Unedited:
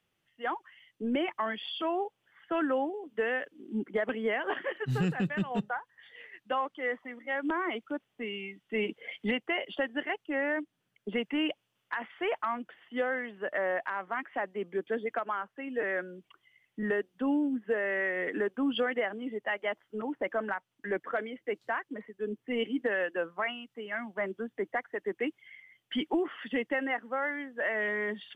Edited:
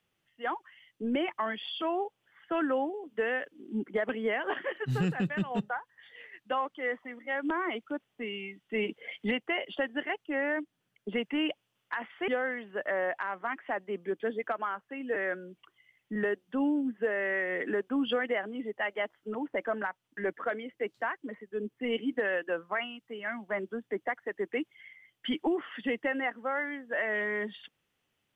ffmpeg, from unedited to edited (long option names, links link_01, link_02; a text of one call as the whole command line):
ffmpeg -i in.wav -filter_complex "[0:a]asplit=2[link_01][link_02];[link_01]atrim=end=12.282[link_03];[link_02]atrim=start=12.948[link_04];[link_03][link_04]acrossfade=duration=0.004:curve1=hsin:curve2=hsin" out.wav